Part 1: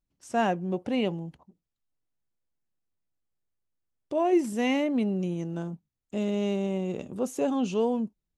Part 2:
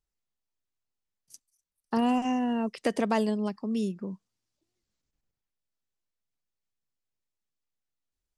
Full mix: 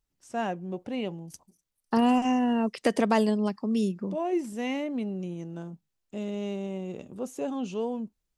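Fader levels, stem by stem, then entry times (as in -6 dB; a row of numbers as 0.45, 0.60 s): -5.0, +3.0 dB; 0.00, 0.00 s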